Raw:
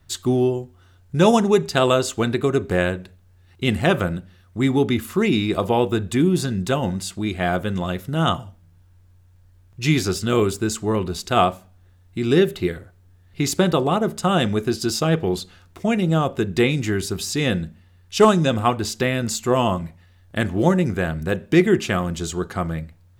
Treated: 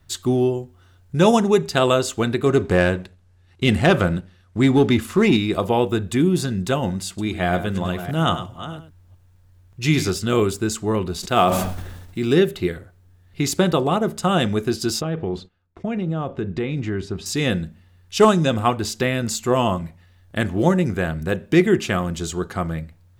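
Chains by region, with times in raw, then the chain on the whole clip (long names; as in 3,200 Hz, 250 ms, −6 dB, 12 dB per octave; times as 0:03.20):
0:02.46–0:05.37: low-pass filter 10,000 Hz + leveller curve on the samples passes 1
0:07.08–0:10.10: delay that plays each chunk backwards 345 ms, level −13 dB + single-tap delay 102 ms −11.5 dB
0:11.20–0:12.35: one scale factor per block 7 bits + parametric band 82 Hz −9.5 dB 0.4 octaves + level that may fall only so fast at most 42 dB per second
0:15.01–0:17.26: downward compressor, threshold −19 dBFS + head-to-tape spacing loss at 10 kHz 23 dB + noise gate −47 dBFS, range −19 dB
whole clip: no processing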